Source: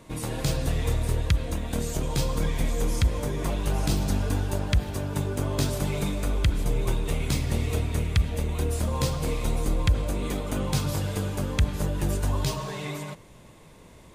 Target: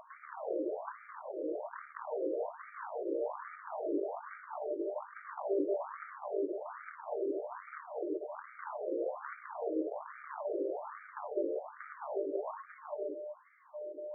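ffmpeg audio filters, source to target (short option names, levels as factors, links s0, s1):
-filter_complex "[0:a]aeval=exprs='val(0)+0.00631*sin(2*PI*600*n/s)':c=same,equalizer=f=310:w=0.37:g=12,acrossover=split=680|5400[s0][s1][s2];[s1]acompressor=threshold=0.00447:ratio=12[s3];[s0][s3][s2]amix=inputs=3:normalize=0,volume=10,asoftclip=hard,volume=0.1,equalizer=f=100:t=o:w=0.33:g=10,equalizer=f=250:t=o:w=0.33:g=-3,equalizer=f=500:t=o:w=0.33:g=-8,equalizer=f=800:t=o:w=0.33:g=-4,equalizer=f=12500:t=o:w=0.33:g=-8,afftfilt=real='re*between(b*sr/1024,420*pow(1700/420,0.5+0.5*sin(2*PI*1.2*pts/sr))/1.41,420*pow(1700/420,0.5+0.5*sin(2*PI*1.2*pts/sr))*1.41)':imag='im*between(b*sr/1024,420*pow(1700/420,0.5+0.5*sin(2*PI*1.2*pts/sr))/1.41,420*pow(1700/420,0.5+0.5*sin(2*PI*1.2*pts/sr))*1.41)':win_size=1024:overlap=0.75"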